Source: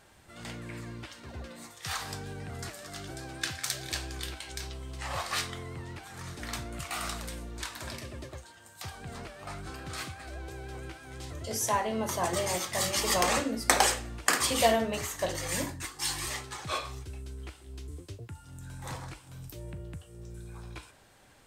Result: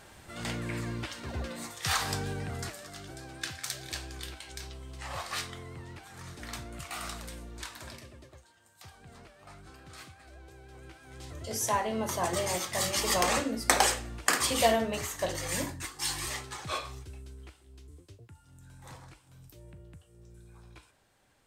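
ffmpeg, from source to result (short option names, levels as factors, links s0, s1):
-af "volume=5.96,afade=t=out:st=2.22:d=0.72:silence=0.334965,afade=t=out:st=7.71:d=0.48:silence=0.473151,afade=t=in:st=10.7:d=0.95:silence=0.334965,afade=t=out:st=16.59:d=1.11:silence=0.375837"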